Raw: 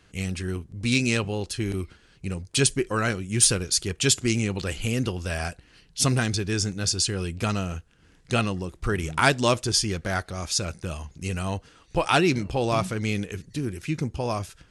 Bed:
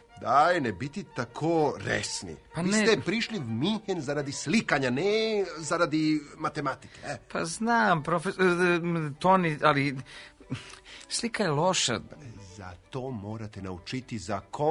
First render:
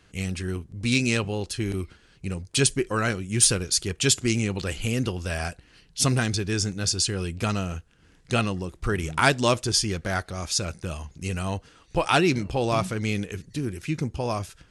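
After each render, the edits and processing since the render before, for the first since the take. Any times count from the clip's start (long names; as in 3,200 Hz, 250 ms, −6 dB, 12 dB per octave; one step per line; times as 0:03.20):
no processing that can be heard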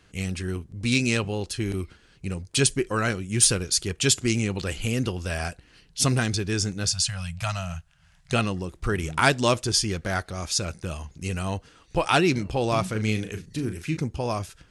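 0:06.87–0:08.33: elliptic band-stop filter 170–620 Hz
0:12.91–0:13.97: double-tracking delay 37 ms −8.5 dB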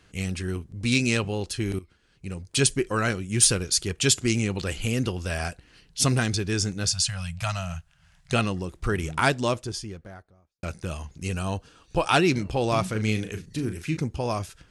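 0:01.79–0:02.67: fade in linear, from −16.5 dB
0:08.84–0:10.63: fade out and dull
0:11.33–0:12.12: notch filter 2,000 Hz, Q 5.2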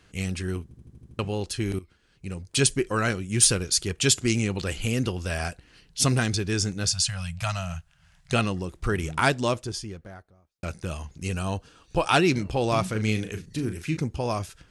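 0:00.63: stutter in place 0.08 s, 7 plays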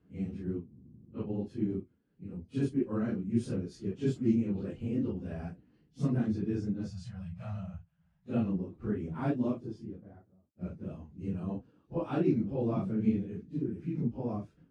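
random phases in long frames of 100 ms
resonant band-pass 230 Hz, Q 1.7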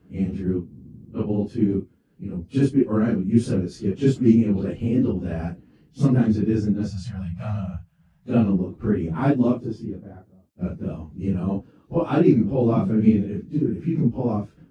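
level +11.5 dB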